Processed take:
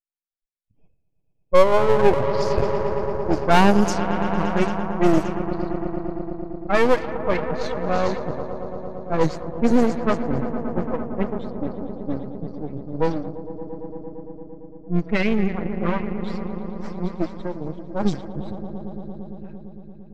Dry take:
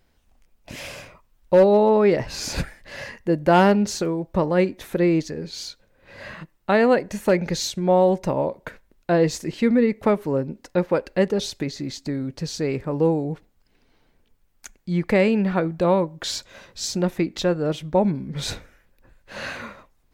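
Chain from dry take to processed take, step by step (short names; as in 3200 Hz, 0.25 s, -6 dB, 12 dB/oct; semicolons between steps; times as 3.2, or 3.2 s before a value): per-bin expansion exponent 3; in parallel at -4 dB: soft clip -23.5 dBFS, distortion -8 dB; on the sum: swelling echo 0.114 s, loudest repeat 5, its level -13.5 dB; half-wave rectifier; low-pass opened by the level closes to 350 Hz, open at -18 dBFS; gain +7 dB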